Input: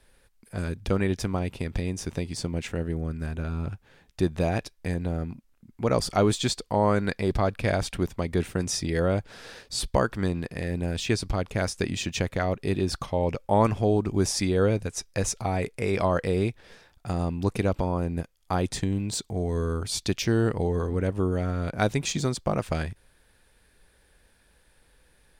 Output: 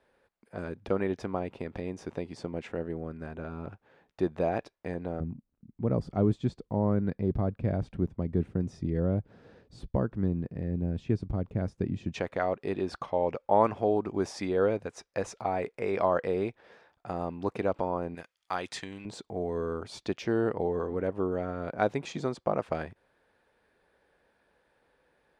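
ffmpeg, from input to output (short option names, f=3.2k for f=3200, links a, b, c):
-af "asetnsamples=n=441:p=0,asendcmd='5.2 bandpass f 160;12.14 bandpass f 750;18.15 bandpass f 1900;19.05 bandpass f 650',bandpass=f=630:t=q:w=0.69:csg=0"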